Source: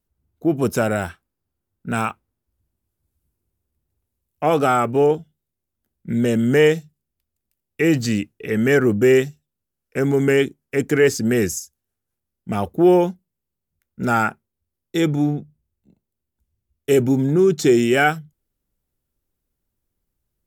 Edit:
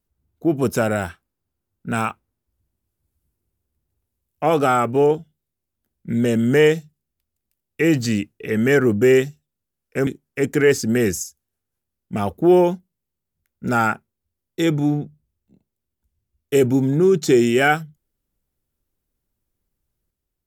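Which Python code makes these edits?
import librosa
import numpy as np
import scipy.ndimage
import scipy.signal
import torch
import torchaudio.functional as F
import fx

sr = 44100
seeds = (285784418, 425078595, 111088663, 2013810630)

y = fx.edit(x, sr, fx.cut(start_s=10.07, length_s=0.36), tone=tone)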